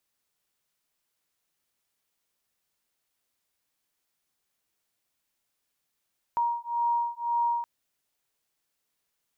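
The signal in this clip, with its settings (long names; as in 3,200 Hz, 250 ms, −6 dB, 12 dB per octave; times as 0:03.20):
two tones that beat 943 Hz, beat 1.9 Hz, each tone −28 dBFS 1.27 s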